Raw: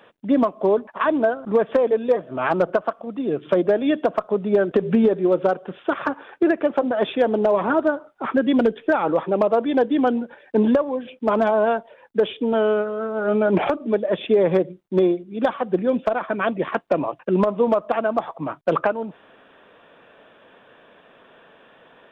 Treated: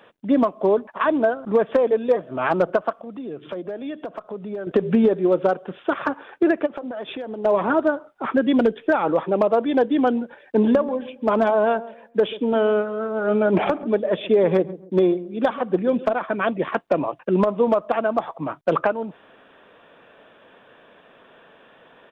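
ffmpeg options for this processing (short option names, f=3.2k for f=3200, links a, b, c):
-filter_complex "[0:a]asettb=1/sr,asplit=3[a][b][c];[a]atrim=end=2.954[d];[b]atrim=start=2.95:end=4.67,asetpts=PTS-STARTPTS,afade=t=in:d=0.004:c=qsin,afade=t=out:st=1.716:d=0.004:c=qsin,acompressor=threshold=-33dB:ratio=2.5:attack=3.2:release=140:knee=1:detection=peak[e];[c]atrim=start=4.666[f];[d][e]acrossfade=d=0.004:c1=hsin:c2=qsin[g];[g][f]acrossfade=d=0.004:c1=qsin:c2=hsin,asplit=3[h][i][j];[h]afade=t=out:st=6.65:d=0.02[k];[i]acompressor=threshold=-27dB:ratio=16:attack=3.2:release=140:knee=1:detection=peak,afade=t=in:st=6.65:d=0.02,afade=t=out:st=7.44:d=0.02[l];[j]afade=t=in:st=7.44:d=0.02[m];[k][l][m]amix=inputs=3:normalize=0,asplit=3[n][o][p];[n]afade=t=out:st=10.6:d=0.02[q];[o]asplit=2[r][s];[s]adelay=136,lowpass=f=800:p=1,volume=-15dB,asplit=2[t][u];[u]adelay=136,lowpass=f=800:p=1,volume=0.33,asplit=2[v][w];[w]adelay=136,lowpass=f=800:p=1,volume=0.33[x];[r][t][v][x]amix=inputs=4:normalize=0,afade=t=in:st=10.6:d=0.02,afade=t=out:st=16.11:d=0.02[y];[p]afade=t=in:st=16.11:d=0.02[z];[q][y][z]amix=inputs=3:normalize=0"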